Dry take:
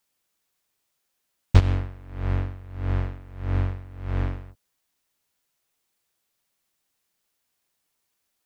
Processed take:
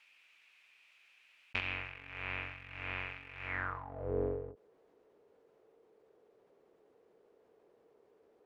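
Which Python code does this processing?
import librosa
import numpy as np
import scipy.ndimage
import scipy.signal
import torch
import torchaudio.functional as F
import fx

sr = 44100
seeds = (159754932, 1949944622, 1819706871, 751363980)

y = fx.leveller(x, sr, passes=2)
y = fx.low_shelf(y, sr, hz=63.0, db=10.5)
y = fx.filter_sweep_bandpass(y, sr, from_hz=2500.0, to_hz=440.0, start_s=3.46, end_s=4.11, q=6.2)
y = fx.high_shelf(y, sr, hz=2800.0, db=-10.0)
y = fx.env_flatten(y, sr, amount_pct=50)
y = y * 10.0 ** (1.5 / 20.0)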